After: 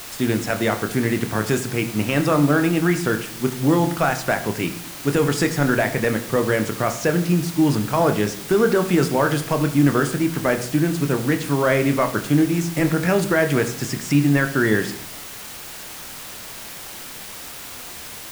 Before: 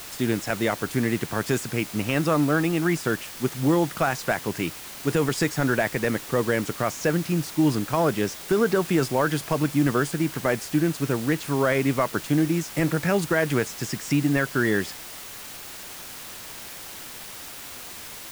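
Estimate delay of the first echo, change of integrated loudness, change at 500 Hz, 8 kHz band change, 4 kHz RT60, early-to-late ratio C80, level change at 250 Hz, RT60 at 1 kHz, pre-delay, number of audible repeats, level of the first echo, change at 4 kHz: no echo, +4.0 dB, +4.0 dB, +3.5 dB, 0.45 s, 15.0 dB, +4.0 dB, 0.55 s, 28 ms, no echo, no echo, +3.5 dB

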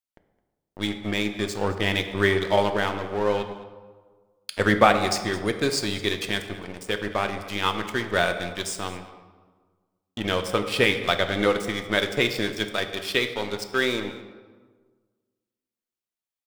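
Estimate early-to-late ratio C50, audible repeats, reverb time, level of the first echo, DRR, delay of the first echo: 9.0 dB, 1, 1.5 s, -19.0 dB, 6.5 dB, 214 ms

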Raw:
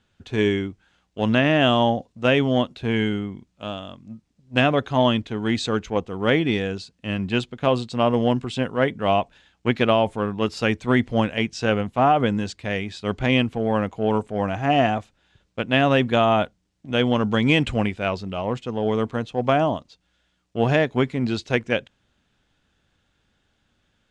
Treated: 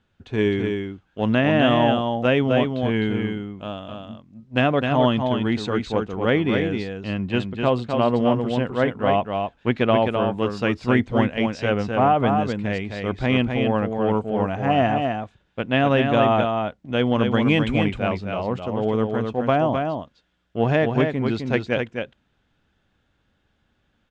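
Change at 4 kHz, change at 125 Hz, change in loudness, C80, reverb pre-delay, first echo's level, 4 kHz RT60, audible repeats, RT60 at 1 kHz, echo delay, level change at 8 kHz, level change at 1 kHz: -3.0 dB, +1.0 dB, +0.5 dB, no reverb, no reverb, -5.0 dB, no reverb, 1, no reverb, 258 ms, no reading, +0.5 dB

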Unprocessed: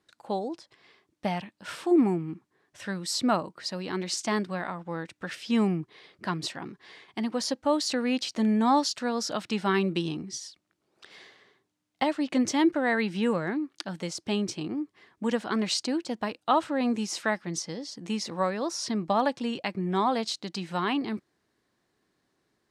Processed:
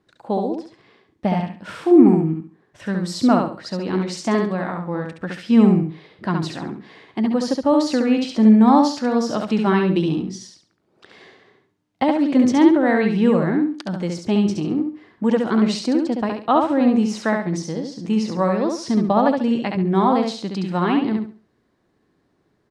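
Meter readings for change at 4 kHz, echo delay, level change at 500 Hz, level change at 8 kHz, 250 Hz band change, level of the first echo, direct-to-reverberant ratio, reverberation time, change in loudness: +0.5 dB, 69 ms, +9.5 dB, -1.5 dB, +11.5 dB, -4.0 dB, no reverb, no reverb, +9.5 dB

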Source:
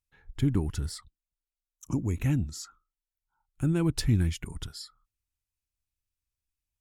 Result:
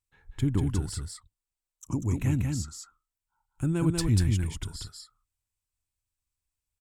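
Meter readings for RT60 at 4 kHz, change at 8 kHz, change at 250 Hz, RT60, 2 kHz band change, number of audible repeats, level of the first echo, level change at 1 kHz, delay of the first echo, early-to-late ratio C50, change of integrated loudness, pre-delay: no reverb, +3.5 dB, +0.5 dB, no reverb, +0.5 dB, 1, -3.5 dB, +2.0 dB, 191 ms, no reverb, +0.5 dB, no reverb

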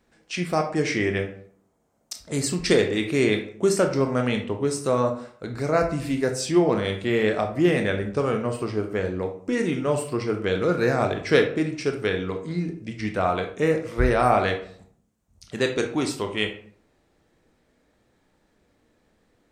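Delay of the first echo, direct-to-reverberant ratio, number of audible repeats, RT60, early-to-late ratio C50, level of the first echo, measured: no echo, 4.0 dB, no echo, 0.55 s, 9.0 dB, no echo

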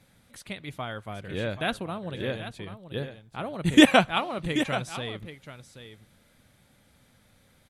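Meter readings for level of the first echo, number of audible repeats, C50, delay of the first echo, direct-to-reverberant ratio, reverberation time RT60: -11.5 dB, 1, no reverb, 783 ms, no reverb, no reverb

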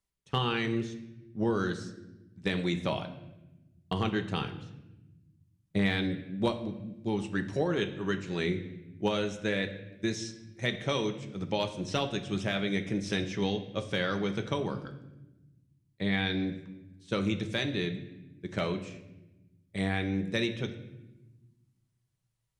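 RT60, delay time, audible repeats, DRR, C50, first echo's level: 1.0 s, no echo, no echo, 6.0 dB, 11.5 dB, no echo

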